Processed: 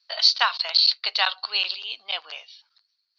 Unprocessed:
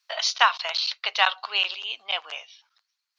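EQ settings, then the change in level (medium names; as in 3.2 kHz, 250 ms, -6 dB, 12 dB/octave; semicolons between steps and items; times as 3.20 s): resonant low-pass 4.5 kHz, resonance Q 7.9; bass shelf 490 Hz +8 dB; peaking EQ 1.6 kHz +2.5 dB 0.66 oct; -6.5 dB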